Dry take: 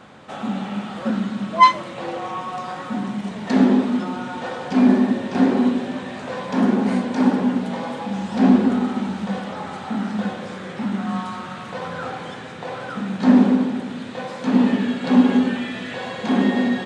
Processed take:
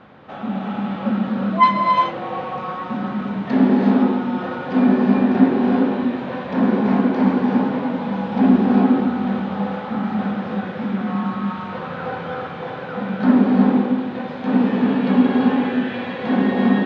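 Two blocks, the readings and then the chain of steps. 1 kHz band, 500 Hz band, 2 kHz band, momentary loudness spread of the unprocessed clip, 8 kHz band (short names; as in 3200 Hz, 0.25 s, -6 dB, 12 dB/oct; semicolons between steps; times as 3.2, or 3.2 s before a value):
+1.5 dB, +2.5 dB, +0.5 dB, 15 LU, n/a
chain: air absorption 280 m; non-linear reverb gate 0.41 s rising, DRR -1 dB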